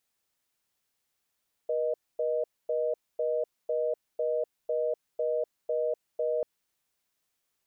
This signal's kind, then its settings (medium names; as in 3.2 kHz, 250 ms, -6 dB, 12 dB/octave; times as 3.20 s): call progress tone reorder tone, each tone -28.5 dBFS 4.74 s